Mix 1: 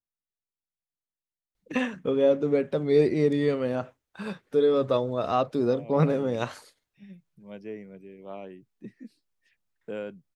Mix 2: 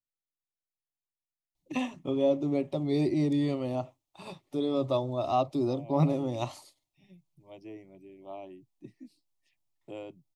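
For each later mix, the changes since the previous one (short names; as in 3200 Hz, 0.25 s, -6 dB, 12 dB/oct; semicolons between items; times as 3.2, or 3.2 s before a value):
master: add fixed phaser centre 310 Hz, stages 8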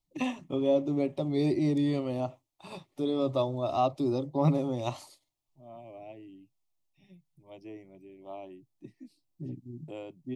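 first voice: entry -1.55 s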